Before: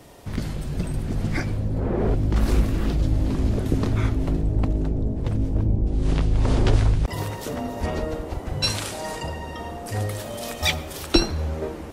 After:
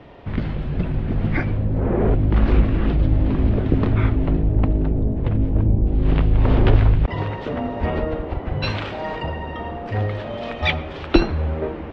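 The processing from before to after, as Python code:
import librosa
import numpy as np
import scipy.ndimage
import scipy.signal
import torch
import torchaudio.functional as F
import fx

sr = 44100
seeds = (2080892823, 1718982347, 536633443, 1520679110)

y = scipy.signal.sosfilt(scipy.signal.butter(4, 3100.0, 'lowpass', fs=sr, output='sos'), x)
y = F.gain(torch.from_numpy(y), 4.0).numpy()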